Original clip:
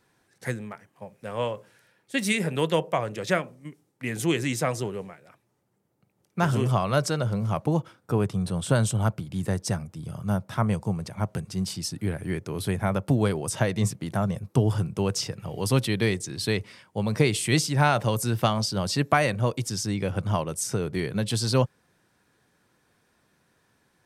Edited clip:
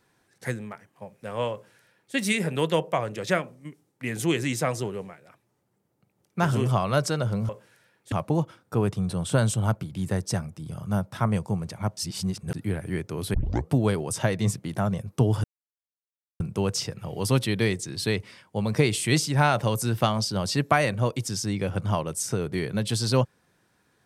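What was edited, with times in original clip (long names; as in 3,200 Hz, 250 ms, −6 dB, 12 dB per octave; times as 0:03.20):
0:01.52–0:02.15: duplicate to 0:07.49
0:11.34–0:11.91: reverse
0:12.71: tape start 0.38 s
0:14.81: splice in silence 0.96 s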